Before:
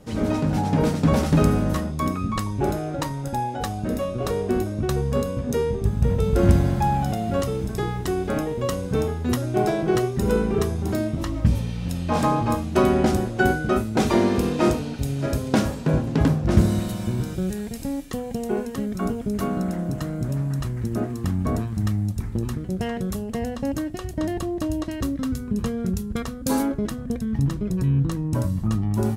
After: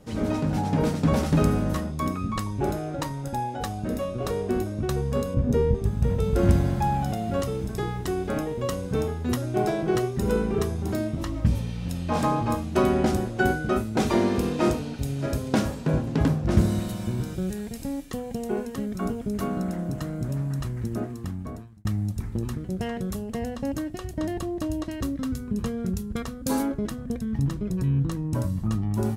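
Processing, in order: 5.34–5.75 tilt -2.5 dB/oct; 20.85–21.85 fade out; gain -3 dB

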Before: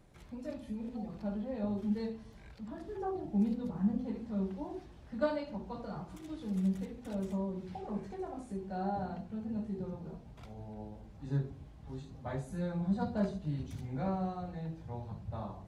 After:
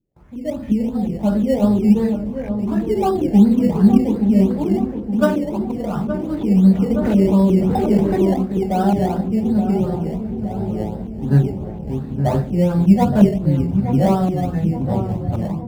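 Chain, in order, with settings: LFO low-pass saw up 2.8 Hz 280–3200 Hz; gate with hold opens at -49 dBFS; in parallel at -7 dB: decimation with a swept rate 14×, swing 60% 2.8 Hz; on the sum: low shelf 150 Hz -6.5 dB; AGC gain up to 15 dB; low shelf 390 Hz +11 dB; on a send: darkening echo 0.87 s, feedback 61%, low-pass 1100 Hz, level -8 dB; 6.9–8.33 on the sum: fast leveller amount 50%; gain -5 dB

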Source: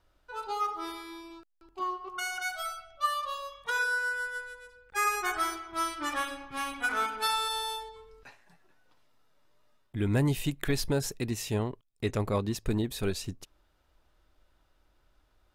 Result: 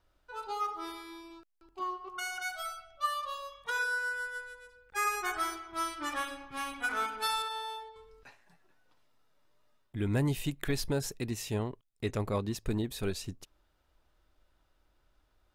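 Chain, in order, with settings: 7.42–7.96 tone controls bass -11 dB, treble -12 dB; gain -3 dB

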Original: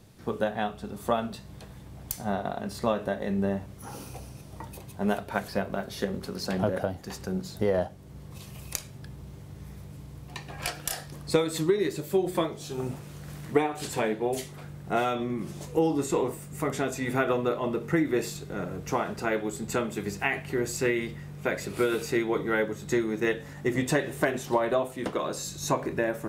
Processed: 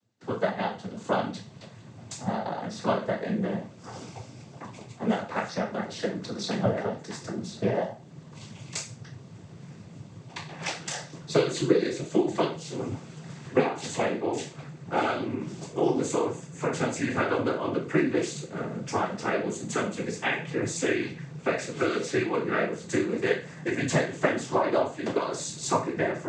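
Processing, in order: spectral trails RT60 0.37 s; gate with hold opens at -39 dBFS; noise vocoder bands 16

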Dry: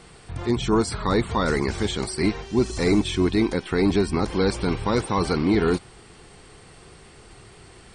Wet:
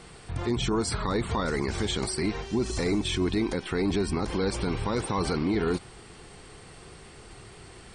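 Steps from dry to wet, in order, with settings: limiter -18.5 dBFS, peak gain reduction 8.5 dB

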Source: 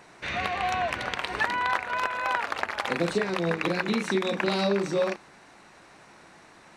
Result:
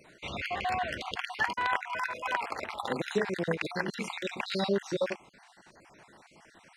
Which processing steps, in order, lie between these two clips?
random spectral dropouts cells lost 42%; bell 1200 Hz -4 dB 0.3 oct; gain -2 dB

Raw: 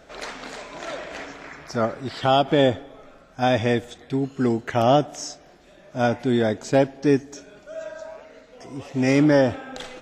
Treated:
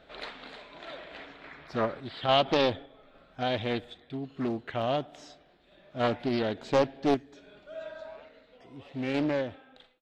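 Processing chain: ending faded out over 1.07 s; random-step tremolo, depth 55%; resonant high shelf 4800 Hz -8 dB, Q 3; Doppler distortion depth 0.51 ms; gain -5.5 dB

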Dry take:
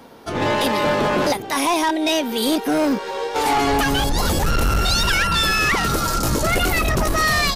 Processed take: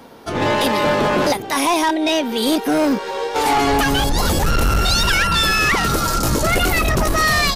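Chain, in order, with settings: 1.93–2.46 high shelf 6500 Hz -> 11000 Hz -9.5 dB; gain +2 dB

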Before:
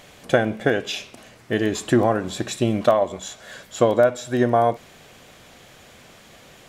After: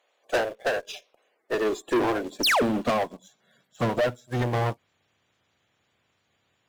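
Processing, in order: bin magnitudes rounded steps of 30 dB; high-pass sweep 540 Hz -> 93 Hz, 1.01–4.63; painted sound fall, 2.43–2.63, 310–6300 Hz -15 dBFS; in parallel at -5.5 dB: sample gate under -30 dBFS; on the sum: tube stage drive 19 dB, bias 0.2; upward expander 2.5:1, over -35 dBFS

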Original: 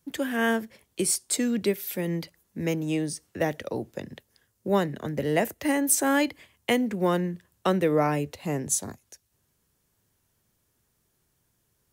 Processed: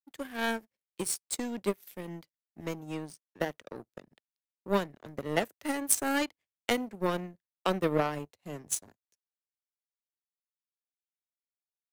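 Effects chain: power-law curve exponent 2; gain +3.5 dB

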